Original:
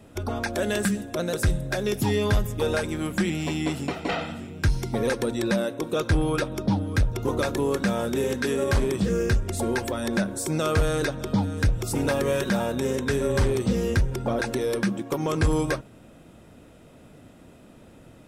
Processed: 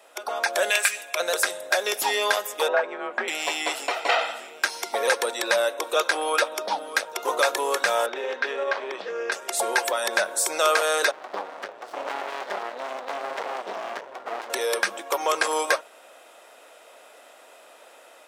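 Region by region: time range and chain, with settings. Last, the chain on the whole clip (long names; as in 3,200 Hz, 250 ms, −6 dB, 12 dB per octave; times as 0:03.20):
0:00.70–0:01.20: high-pass filter 1,100 Hz 6 dB per octave + parametric band 2,400 Hz +14 dB 0.23 octaves
0:02.68–0:03.28: frequency shifter +36 Hz + low-pass filter 1,500 Hz
0:08.06–0:09.32: high-frequency loss of the air 250 metres + downward compressor 3 to 1, threshold −24 dBFS
0:11.11–0:14.50: head-to-tape spacing loss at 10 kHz 28 dB + windowed peak hold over 65 samples
whole clip: high-pass filter 580 Hz 24 dB per octave; automatic gain control gain up to 3.5 dB; level +4.5 dB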